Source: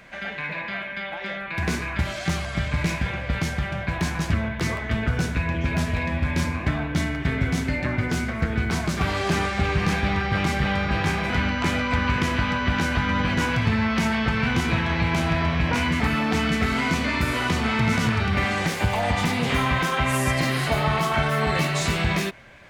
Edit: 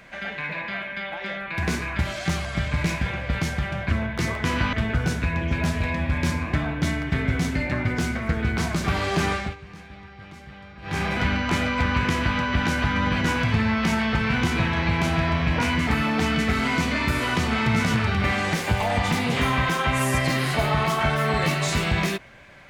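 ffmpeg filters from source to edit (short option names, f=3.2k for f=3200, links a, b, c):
-filter_complex "[0:a]asplit=6[a][b][c][d][e][f];[a]atrim=end=3.902[g];[b]atrim=start=4.318:end=4.862[h];[c]atrim=start=12.218:end=12.512[i];[d]atrim=start=4.858:end=9.69,asetpts=PTS-STARTPTS,afade=t=out:st=4.622:d=0.21:silence=0.1[j];[e]atrim=start=9.69:end=10.95,asetpts=PTS-STARTPTS,volume=-20dB[k];[f]atrim=start=10.95,asetpts=PTS-STARTPTS,afade=t=in:d=0.21:silence=0.1[l];[g][h]acrossfade=d=0.004:c1=hsin:c2=hsin[m];[m][i]acrossfade=d=0.004:c1=hsin:c2=hsin[n];[j][k][l]concat=n=3:v=0:a=1[o];[n][o]acrossfade=d=0.004:c1=hsin:c2=hsin"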